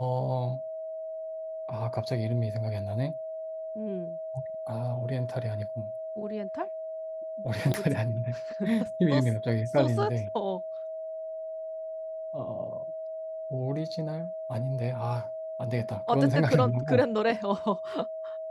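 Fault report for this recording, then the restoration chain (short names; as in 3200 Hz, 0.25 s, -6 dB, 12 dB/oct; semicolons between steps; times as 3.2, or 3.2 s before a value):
tone 640 Hz -34 dBFS
7.74 pop -15 dBFS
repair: de-click; notch 640 Hz, Q 30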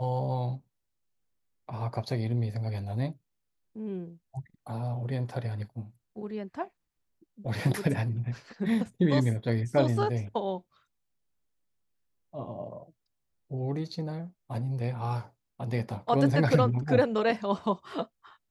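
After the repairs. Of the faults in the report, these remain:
none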